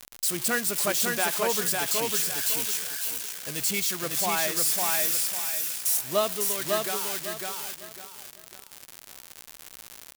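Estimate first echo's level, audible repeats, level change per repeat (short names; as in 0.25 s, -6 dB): -3.0 dB, 3, -11.0 dB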